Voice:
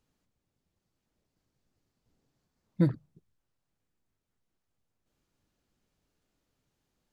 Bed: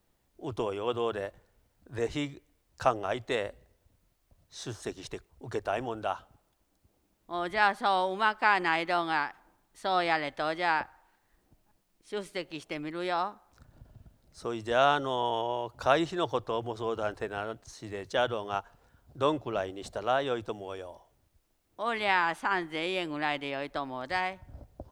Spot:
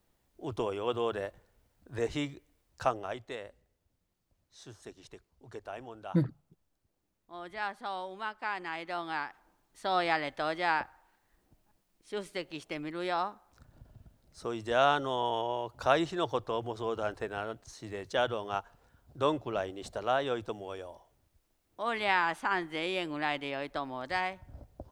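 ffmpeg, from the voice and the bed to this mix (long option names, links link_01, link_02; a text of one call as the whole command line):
ffmpeg -i stem1.wav -i stem2.wav -filter_complex "[0:a]adelay=3350,volume=-2.5dB[link_01];[1:a]volume=8.5dB,afade=type=out:start_time=2.6:duration=0.77:silence=0.316228,afade=type=in:start_time=8.7:duration=1.22:silence=0.334965[link_02];[link_01][link_02]amix=inputs=2:normalize=0" out.wav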